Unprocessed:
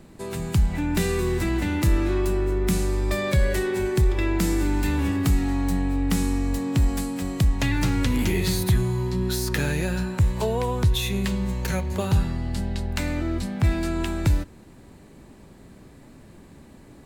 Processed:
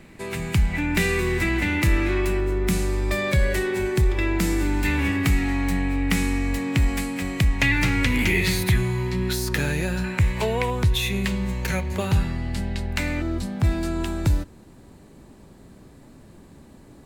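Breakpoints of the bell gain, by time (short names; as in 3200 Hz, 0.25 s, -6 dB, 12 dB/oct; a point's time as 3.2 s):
bell 2200 Hz 0.87 oct
+11.5 dB
from 2.4 s +5 dB
from 4.85 s +12.5 dB
from 9.33 s +3 dB
from 10.04 s +14.5 dB
from 10.7 s +6.5 dB
from 13.22 s -3 dB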